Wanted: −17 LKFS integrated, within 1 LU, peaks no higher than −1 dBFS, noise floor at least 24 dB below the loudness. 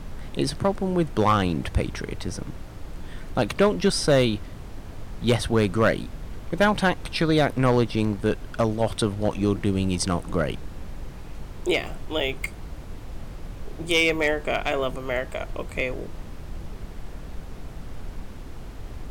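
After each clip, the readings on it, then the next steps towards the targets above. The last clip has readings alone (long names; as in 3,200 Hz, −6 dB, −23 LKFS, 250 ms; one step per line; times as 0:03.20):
share of clipped samples 0.4%; peaks flattened at −12.0 dBFS; background noise floor −39 dBFS; target noise floor −49 dBFS; integrated loudness −24.5 LKFS; sample peak −12.0 dBFS; target loudness −17.0 LKFS
→ clipped peaks rebuilt −12 dBFS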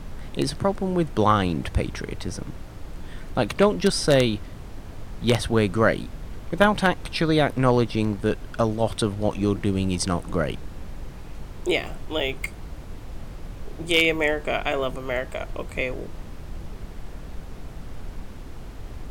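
share of clipped samples 0.0%; background noise floor −39 dBFS; target noise floor −48 dBFS
→ noise reduction from a noise print 9 dB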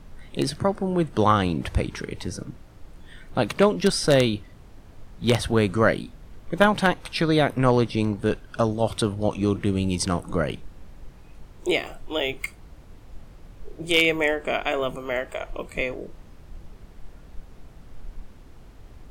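background noise floor −47 dBFS; target noise floor −48 dBFS
→ noise reduction from a noise print 6 dB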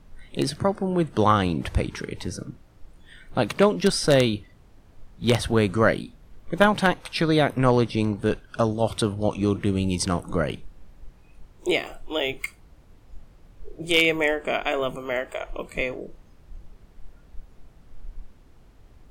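background noise floor −53 dBFS; integrated loudness −24.0 LKFS; sample peak −3.0 dBFS; target loudness −17.0 LKFS
→ level +7 dB
brickwall limiter −1 dBFS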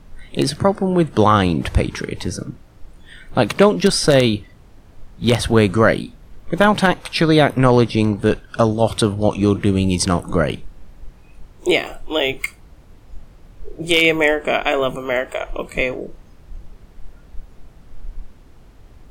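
integrated loudness −17.5 LKFS; sample peak −1.0 dBFS; background noise floor −46 dBFS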